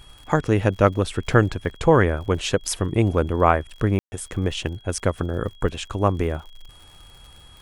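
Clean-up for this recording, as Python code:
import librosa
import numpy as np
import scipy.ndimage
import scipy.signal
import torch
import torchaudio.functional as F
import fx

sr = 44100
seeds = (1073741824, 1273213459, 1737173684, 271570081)

y = fx.fix_declick_ar(x, sr, threshold=6.5)
y = fx.notch(y, sr, hz=3300.0, q=30.0)
y = fx.fix_ambience(y, sr, seeds[0], print_start_s=6.7, print_end_s=7.2, start_s=3.99, end_s=4.12)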